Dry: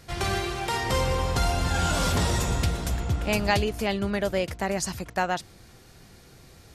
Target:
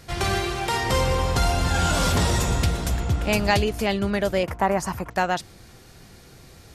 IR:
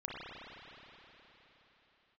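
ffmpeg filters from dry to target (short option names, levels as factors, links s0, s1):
-filter_complex "[0:a]asettb=1/sr,asplit=3[s0][s1][s2];[s0]atrim=end=4.434[s3];[s1]atrim=start=4.43:end=5.11,asetpts=PTS-STARTPTS,afade=t=in:d=0.004:c=qsin,afade=t=out:st=0.676:d=0.004:c=qsin,equalizer=f=1000:t=o:w=1:g=10,equalizer=f=4000:t=o:w=1:g=-10,equalizer=f=8000:t=o:w=1:g=-6[s4];[s2]atrim=start=5.106[s5];[s3][s4]acrossfade=d=0.004:c1=hsin:c2=qsin[s6];[s6][s5]acrossfade=d=0.004:c1=qsin:c2=hsin,acontrast=78,volume=0.668"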